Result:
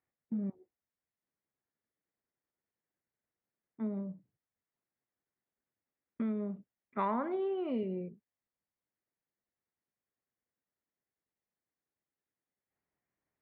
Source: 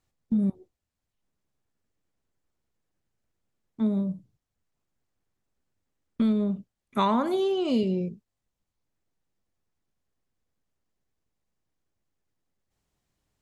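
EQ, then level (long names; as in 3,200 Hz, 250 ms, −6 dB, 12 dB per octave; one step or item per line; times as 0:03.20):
high-pass filter 410 Hz 6 dB per octave
transistor ladder low-pass 2,300 Hz, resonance 55%
tilt shelving filter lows +6 dB, about 1,100 Hz
0.0 dB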